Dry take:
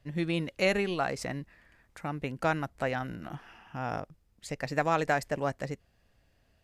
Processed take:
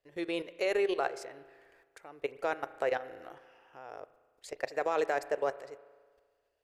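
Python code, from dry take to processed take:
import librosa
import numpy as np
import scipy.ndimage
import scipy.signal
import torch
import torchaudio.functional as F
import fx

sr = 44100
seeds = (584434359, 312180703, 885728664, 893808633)

y = fx.level_steps(x, sr, step_db=16)
y = fx.low_shelf_res(y, sr, hz=290.0, db=-12.5, q=3.0)
y = fx.rev_spring(y, sr, rt60_s=1.6, pass_ms=(35,), chirp_ms=30, drr_db=15.5)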